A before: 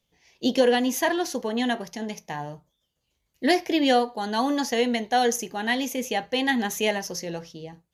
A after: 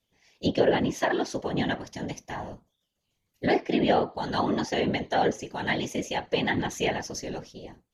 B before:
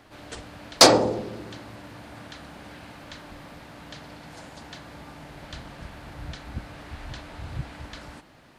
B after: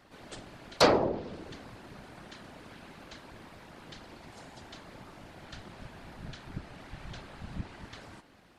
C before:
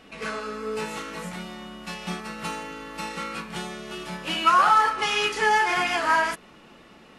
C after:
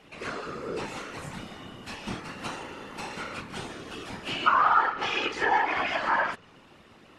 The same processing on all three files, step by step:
treble cut that deepens with the level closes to 2,800 Hz, closed at −18.5 dBFS
random phases in short frames
normalise the peak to −9 dBFS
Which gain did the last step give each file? −2.5, −6.0, −3.5 decibels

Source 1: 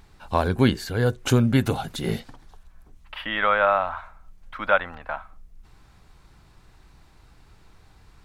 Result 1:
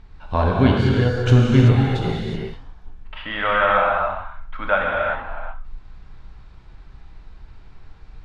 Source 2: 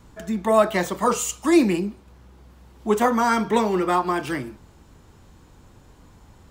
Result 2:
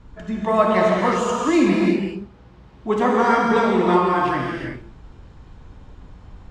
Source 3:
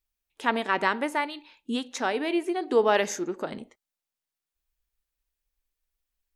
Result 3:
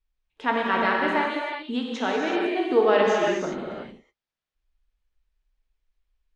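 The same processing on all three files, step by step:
low-pass filter 3,900 Hz 12 dB per octave
low-shelf EQ 71 Hz +11.5 dB
reverb whose tail is shaped and stops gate 400 ms flat, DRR −2.5 dB
level −1 dB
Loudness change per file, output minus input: +4.5, +2.5, +3.5 LU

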